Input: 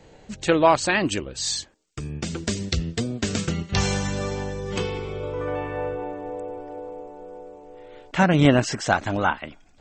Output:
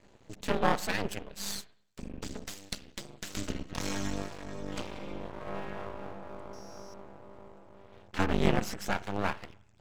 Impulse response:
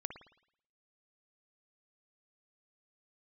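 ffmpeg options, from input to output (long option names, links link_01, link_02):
-filter_complex "[0:a]asettb=1/sr,asplit=3[link_01][link_02][link_03];[link_01]atrim=end=2.464[link_04];[link_02]atrim=start=2.46:end=3.37,asetpts=PTS-STARTPTS,afade=type=in:duration=0.004:curve=qsin,afade=type=out:start_time=0.906:duration=0.004:curve=qsin,highpass=frequency=950:poles=1[link_05];[link_03]atrim=start=3.366[link_06];[link_04][link_05]acrossfade=duration=0.004:curve1=hsin:curve2=qsin[link_07];[link_07][link_06]acrossfade=duration=0.004:curve1=qsin:curve2=hsin,aeval=exprs='val(0)*sin(2*PI*100*n/s)':channel_layout=same,asettb=1/sr,asplit=3[link_08][link_09][link_10];[link_08]atrim=end=6.534[link_11];[link_09]atrim=start=6.53:end=6.94,asetpts=PTS-STARTPTS,afade=type=in:duration=0.004:curve=qsin,afade=type=out:start_time=0.406:duration=0.004:curve=qsin,aeval=exprs='val(0)+0.00398*sin(2*PI*5600*n/s)':channel_layout=same[link_12];[link_10]atrim=start=6.936[link_13];[link_11][link_12]acrossfade=duration=0.004:curve1=hsin:curve2=qsin[link_14];[link_14][link_13]acrossfade=duration=0.004:curve1=qsin:curve2=hsin,aeval=exprs='max(val(0),0)':channel_layout=same,asplit=2[link_15][link_16];[1:a]atrim=start_sample=2205[link_17];[link_16][link_17]afir=irnorm=-1:irlink=0,volume=-9dB[link_18];[link_15][link_18]amix=inputs=2:normalize=0,volume=-5.5dB"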